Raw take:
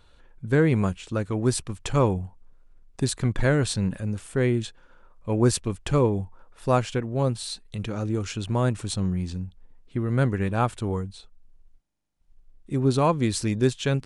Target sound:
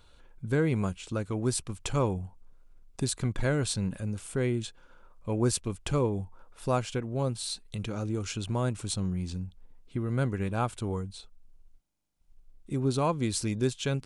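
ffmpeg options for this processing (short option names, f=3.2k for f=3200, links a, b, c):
-filter_complex "[0:a]highshelf=f=5.2k:g=5,bandreject=f=1.8k:w=11,asplit=2[a][b];[b]acompressor=threshold=-31dB:ratio=6,volume=0.5dB[c];[a][c]amix=inputs=2:normalize=0,volume=-8dB"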